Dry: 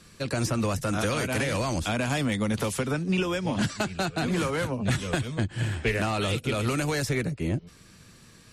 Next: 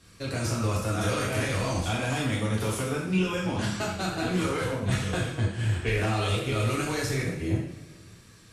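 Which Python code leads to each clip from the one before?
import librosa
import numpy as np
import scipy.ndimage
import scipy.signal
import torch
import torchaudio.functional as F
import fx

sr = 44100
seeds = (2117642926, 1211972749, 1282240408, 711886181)

y = fx.rev_double_slope(x, sr, seeds[0], early_s=0.68, late_s=2.3, knee_db=-18, drr_db=-5.0)
y = y * librosa.db_to_amplitude(-7.0)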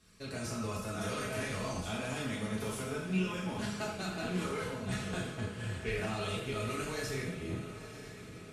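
y = x + 0.44 * np.pad(x, (int(4.7 * sr / 1000.0), 0))[:len(x)]
y = fx.echo_diffused(y, sr, ms=976, feedback_pct=54, wet_db=-12)
y = y * librosa.db_to_amplitude(-9.0)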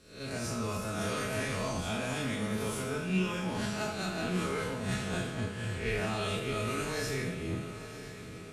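y = fx.spec_swells(x, sr, rise_s=0.53)
y = y * librosa.db_to_amplitude(1.5)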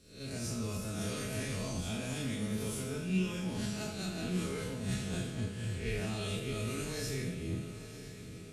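y = fx.peak_eq(x, sr, hz=1100.0, db=-11.0, octaves=2.3)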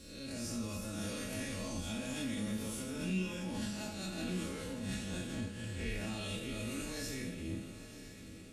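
y = x + 0.58 * np.pad(x, (int(3.6 * sr / 1000.0), 0))[:len(x)]
y = fx.pre_swell(y, sr, db_per_s=46.0)
y = y * librosa.db_to_amplitude(-3.5)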